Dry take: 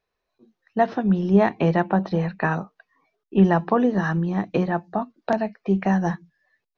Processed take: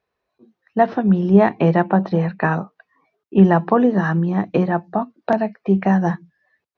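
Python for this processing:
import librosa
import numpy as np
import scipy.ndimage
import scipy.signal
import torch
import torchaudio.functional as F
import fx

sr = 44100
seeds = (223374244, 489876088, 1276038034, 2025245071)

y = scipy.signal.sosfilt(scipy.signal.butter(2, 63.0, 'highpass', fs=sr, output='sos'), x)
y = fx.high_shelf(y, sr, hz=4000.0, db=-10.5)
y = F.gain(torch.from_numpy(y), 4.5).numpy()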